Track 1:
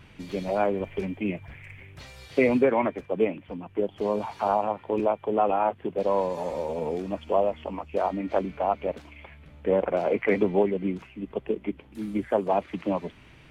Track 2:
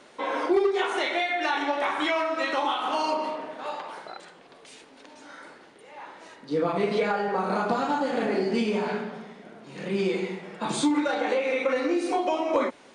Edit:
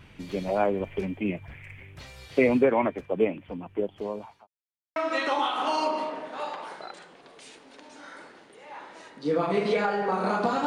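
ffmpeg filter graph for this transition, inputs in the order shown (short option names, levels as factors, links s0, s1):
-filter_complex "[0:a]apad=whole_dur=10.66,atrim=end=10.66,asplit=2[s0][s1];[s0]atrim=end=4.47,asetpts=PTS-STARTPTS,afade=t=out:st=3.66:d=0.81[s2];[s1]atrim=start=4.47:end=4.96,asetpts=PTS-STARTPTS,volume=0[s3];[1:a]atrim=start=2.22:end=7.92,asetpts=PTS-STARTPTS,afade=t=in:d=0.004:c=hsin[s4];[s2][s3][s4]concat=n=3:v=0:a=1"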